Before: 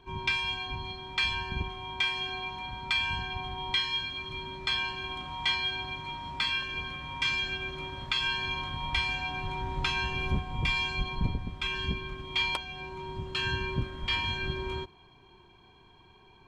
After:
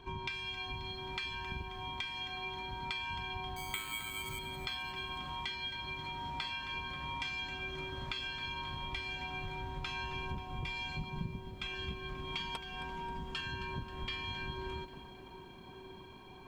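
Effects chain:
0:10.96–0:11.40: parametric band 170 Hz +13.5 dB 1.7 octaves
0:12.32–0:13.41: comb filter 4.4 ms, depth 92%
downward compressor 6 to 1, threshold −41 dBFS, peak gain reduction 24.5 dB
delay with a band-pass on its return 1,191 ms, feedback 70%, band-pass 410 Hz, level −7 dB
0:03.56–0:04.39: bad sample-rate conversion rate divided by 8×, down none, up hold
feedback echo at a low word length 267 ms, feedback 55%, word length 11 bits, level −13 dB
level +2.5 dB

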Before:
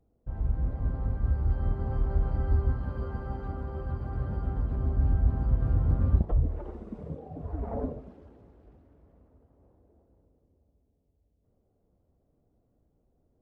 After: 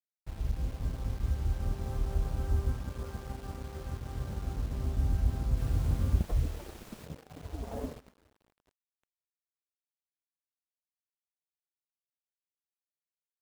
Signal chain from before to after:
bit reduction 8 bits
dead-zone distortion −44 dBFS
0:05.56–0:07.05: background noise pink −49 dBFS
level −3.5 dB

